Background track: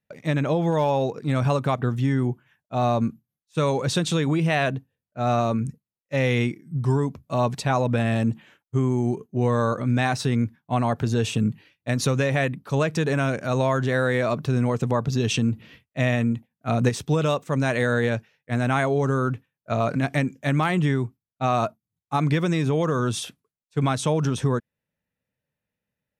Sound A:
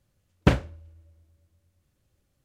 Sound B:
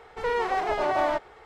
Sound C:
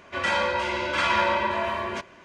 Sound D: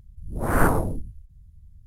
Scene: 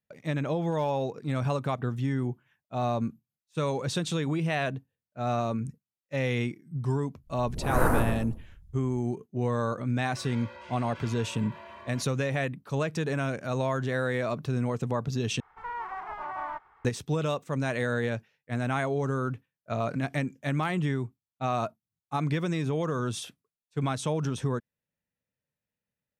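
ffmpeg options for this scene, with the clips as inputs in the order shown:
-filter_complex "[0:a]volume=-6.5dB[a];[4:a]aecho=1:1:118|236|354:0.668|0.16|0.0385[b];[3:a]acompressor=threshold=-26dB:ratio=6:attack=3.2:release=140:knee=1:detection=peak[c];[2:a]firequalizer=gain_entry='entry(150,0);entry(490,-12);entry(980,10);entry(1700,3);entry(4000,-11)':delay=0.05:min_phase=1[d];[a]asplit=2[e][f];[e]atrim=end=15.404[g];[d]atrim=end=1.45,asetpts=PTS-STARTPTS,volume=-13dB[h];[f]atrim=start=16.846[i];[b]atrim=end=1.86,asetpts=PTS-STARTPTS,volume=-6dB,afade=t=in:d=0.1,afade=t=out:st=1.76:d=0.1,adelay=7210[j];[c]atrim=end=2.24,asetpts=PTS-STARTPTS,volume=-16dB,afade=t=in:d=0.004:c=hsin,afade=t=out:st=2.236:d=0.004:c=hsin,adelay=441882S[k];[g][h]acrossfade=d=0.004:c1=hsin:c2=hsin[l];[l][i]acrossfade=d=0.004:c1=hsin:c2=hsin[m];[m][j][k]amix=inputs=3:normalize=0"

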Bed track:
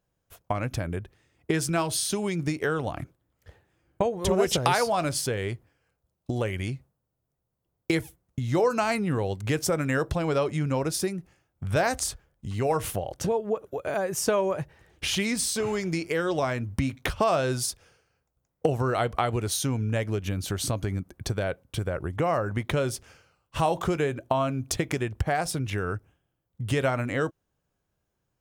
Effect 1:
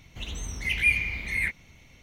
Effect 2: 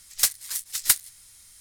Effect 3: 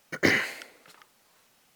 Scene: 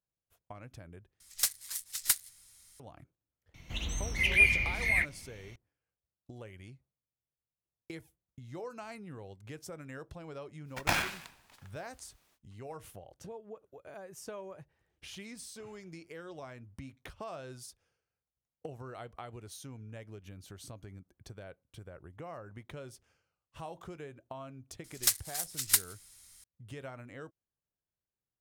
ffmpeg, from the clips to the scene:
-filter_complex "[2:a]asplit=2[a][b];[0:a]volume=-19.5dB[c];[1:a]bandreject=f=420:w=12[d];[3:a]aeval=exprs='val(0)*sgn(sin(2*PI*430*n/s))':c=same[e];[c]asplit=2[f][g];[f]atrim=end=1.204[h];[a]atrim=end=1.6,asetpts=PTS-STARTPTS,volume=-8dB[i];[g]atrim=start=2.796[j];[d]atrim=end=2.02,asetpts=PTS-STARTPTS,volume=-0.5dB,afade=t=in:d=0.004:c=hsin,afade=t=out:st=2.016:d=0.004:c=hsin,adelay=3540[k];[e]atrim=end=1.75,asetpts=PTS-STARTPTS,volume=-7dB,afade=t=in:d=0.05,afade=t=out:st=1.7:d=0.05,adelay=10640[l];[b]atrim=end=1.6,asetpts=PTS-STARTPTS,volume=-6dB,afade=t=in:d=0.004:c=hsin,afade=t=out:st=1.596:d=0.004:c=hsin,adelay=24840[m];[h][i]acrossfade=d=0.004:c1=hsin:c2=hsin[n];[n][j]acrossfade=d=0.004:c1=hsin:c2=hsin[o];[o][k][l][m]amix=inputs=4:normalize=0"

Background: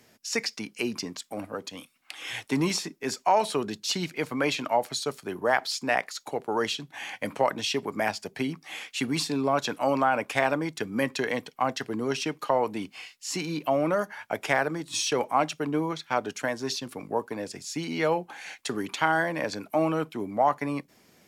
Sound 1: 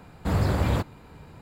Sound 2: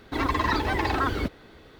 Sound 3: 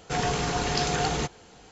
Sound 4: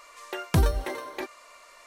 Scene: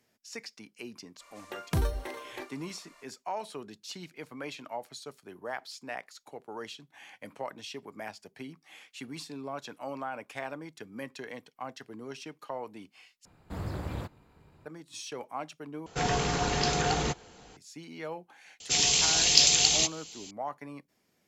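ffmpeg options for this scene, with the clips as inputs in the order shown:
-filter_complex "[3:a]asplit=2[a][b];[0:a]volume=-13.5dB[c];[4:a]asplit=2[d][e];[e]adelay=39,volume=-12dB[f];[d][f]amix=inputs=2:normalize=0[g];[1:a]tremolo=f=230:d=0.571[h];[b]aexciter=amount=10.4:drive=5:freq=2.3k[i];[c]asplit=3[j][k][l];[j]atrim=end=13.254[m];[h]atrim=end=1.41,asetpts=PTS-STARTPTS,volume=-10dB[n];[k]atrim=start=14.656:end=15.864[o];[a]atrim=end=1.71,asetpts=PTS-STARTPTS,volume=-1.5dB[p];[l]atrim=start=17.566[q];[g]atrim=end=1.86,asetpts=PTS-STARTPTS,volume=-7dB,afade=t=in:d=0.02,afade=t=out:st=1.84:d=0.02,adelay=1190[r];[i]atrim=end=1.71,asetpts=PTS-STARTPTS,volume=-10.5dB,afade=t=in:d=0.004:c=hsin,afade=t=out:st=1.706:d=0.004:c=hsin,adelay=820260S[s];[m][n]acrossfade=d=0.004:c1=hsin:c2=hsin[t];[t][o]acrossfade=d=0.004:c1=hsin:c2=hsin[u];[u][p]acrossfade=d=0.004:c1=hsin:c2=hsin[v];[v][q]acrossfade=d=0.004:c1=hsin:c2=hsin[w];[w][r][s]amix=inputs=3:normalize=0"

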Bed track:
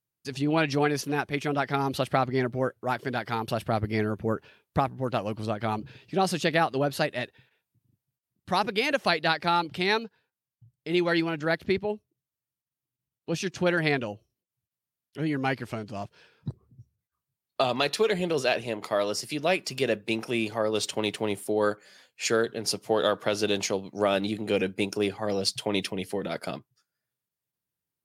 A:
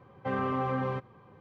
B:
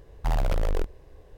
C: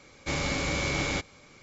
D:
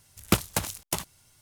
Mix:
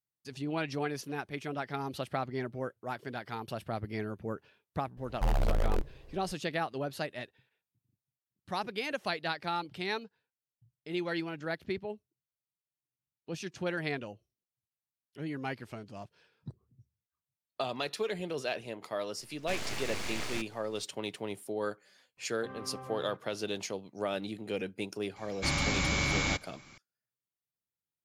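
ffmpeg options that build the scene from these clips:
-filter_complex "[3:a]asplit=2[a][b];[0:a]volume=-9.5dB[c];[a]aeval=exprs='abs(val(0))':c=same[d];[b]equalizer=f=460:t=o:w=0.54:g=-12[e];[2:a]atrim=end=1.37,asetpts=PTS-STARTPTS,volume=-3.5dB,afade=t=in:d=0.004:c=hsin,afade=t=out:st=1.366:d=0.004:c=hsin,adelay=219177S[f];[d]atrim=end=1.62,asetpts=PTS-STARTPTS,volume=-6dB,afade=t=in:d=0.004:c=hsin,afade=t=out:st=1.616:d=0.004:c=hsin,adelay=19210[g];[1:a]atrim=end=1.4,asetpts=PTS-STARTPTS,volume=-15dB,afade=t=in:d=0.004:c=hsin,afade=t=out:st=1.396:d=0.004:c=hsin,adelay=22170[h];[e]atrim=end=1.62,asetpts=PTS-STARTPTS,afade=t=in:d=0.004:c=hsin,afade=t=out:st=1.616:d=0.004:c=hsin,adelay=25160[i];[c][f][g][h][i]amix=inputs=5:normalize=0"

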